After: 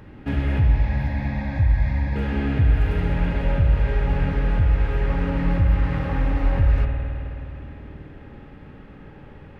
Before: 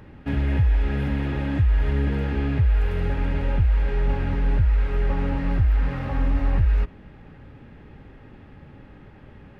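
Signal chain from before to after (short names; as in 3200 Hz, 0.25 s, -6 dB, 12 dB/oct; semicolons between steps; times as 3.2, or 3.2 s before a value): 0.59–2.16 fixed phaser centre 2000 Hz, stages 8; on a send: narrowing echo 91 ms, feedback 85%, band-pass 340 Hz, level -10 dB; on the sum: spring tank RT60 3.2 s, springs 52 ms, chirp 45 ms, DRR 2 dB; gain +1 dB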